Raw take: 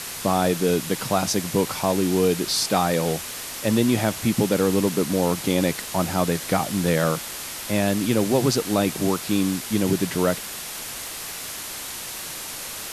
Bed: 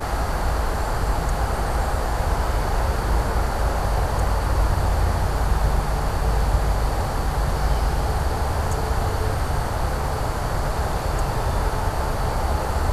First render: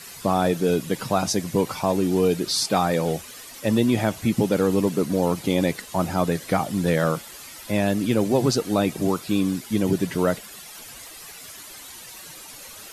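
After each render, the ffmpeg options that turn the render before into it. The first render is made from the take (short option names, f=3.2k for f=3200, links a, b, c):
-af "afftdn=nr=12:nf=-34"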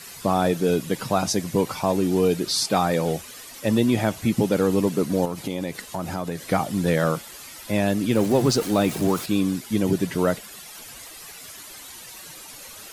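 -filter_complex "[0:a]asettb=1/sr,asplit=3[a][b][c];[a]atrim=end=5.254[d];[b]atrim=start=5.25:end=6.42,asetpts=PTS-STARTPTS,afade=t=in:d=0.004:c=qsin,afade=t=out:st=1.166:d=0.004:c=qsin,acompressor=threshold=-25dB:ratio=3:attack=3.2:release=140:knee=1:detection=peak[e];[c]atrim=start=6.416[f];[d][e]acrossfade=d=0.004:c1=hsin:c2=qsin[g];[g][f]acrossfade=d=0.004:c1=qsin:c2=hsin,asettb=1/sr,asplit=3[h][i][j];[h]atrim=end=8.154[k];[i]atrim=start=8.15:end=9.26,asetpts=PTS-STARTPTS,afade=t=in:d=0.004:c=qsin,afade=t=out:st=1.106:d=0.004:c=qsin,aeval=exprs='val(0)+0.5*0.0282*sgn(val(0))':c=same[l];[j]atrim=start=9.256[m];[k][l]acrossfade=d=0.004:c1=hsin:c2=qsin[n];[n][m]acrossfade=d=0.004:c1=qsin:c2=hsin"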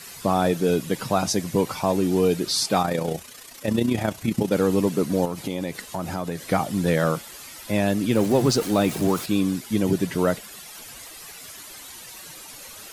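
-filter_complex "[0:a]asettb=1/sr,asplit=3[a][b][c];[a]atrim=end=2.824[d];[b]atrim=start=2.82:end=4.52,asetpts=PTS-STARTPTS,afade=t=in:d=0.004:c=qsin,afade=t=out:st=1.696:d=0.004:c=qsin,tremolo=f=30:d=0.571[e];[c]atrim=start=4.516[f];[d][e]acrossfade=d=0.004:c1=hsin:c2=qsin[g];[g][f]acrossfade=d=0.004:c1=qsin:c2=hsin"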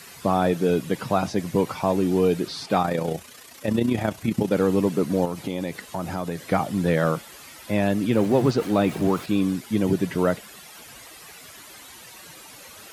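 -filter_complex "[0:a]acrossover=split=3300[a][b];[b]acompressor=threshold=-43dB:ratio=4:attack=1:release=60[c];[a][c]amix=inputs=2:normalize=0,highpass=52"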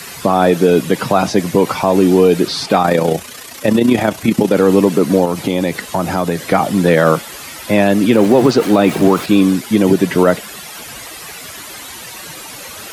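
-filter_complex "[0:a]acrossover=split=180[a][b];[a]acompressor=threshold=-40dB:ratio=6[c];[c][b]amix=inputs=2:normalize=0,alimiter=level_in=13dB:limit=-1dB:release=50:level=0:latency=1"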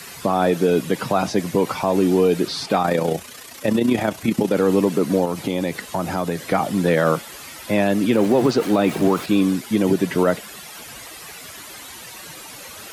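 -af "volume=-6.5dB"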